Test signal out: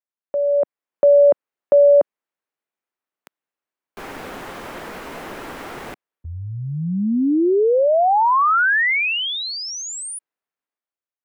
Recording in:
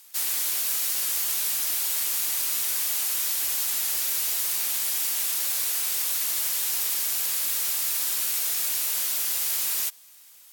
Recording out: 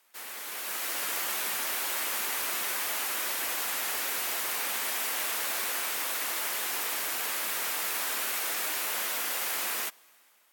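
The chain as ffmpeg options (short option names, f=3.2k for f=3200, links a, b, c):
-filter_complex "[0:a]dynaudnorm=f=150:g=9:m=11dB,acrossover=split=210 2400:gain=0.158 1 0.178[a][b][c];[a][b][c]amix=inputs=3:normalize=0,volume=-2dB"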